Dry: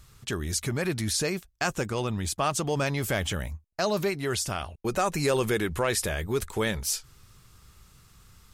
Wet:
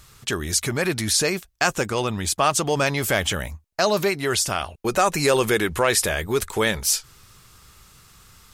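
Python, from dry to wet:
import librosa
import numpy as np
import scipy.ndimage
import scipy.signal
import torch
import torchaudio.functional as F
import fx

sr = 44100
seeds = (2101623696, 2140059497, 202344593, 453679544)

y = fx.low_shelf(x, sr, hz=280.0, db=-7.5)
y = y * 10.0 ** (8.0 / 20.0)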